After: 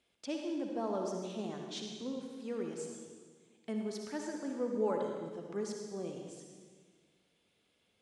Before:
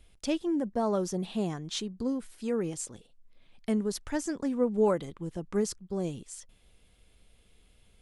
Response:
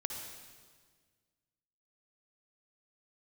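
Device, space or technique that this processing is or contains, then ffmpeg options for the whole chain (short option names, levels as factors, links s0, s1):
supermarket ceiling speaker: -filter_complex "[0:a]highpass=220,lowpass=6900[s0];[1:a]atrim=start_sample=2205[s1];[s0][s1]afir=irnorm=-1:irlink=0,volume=0.447"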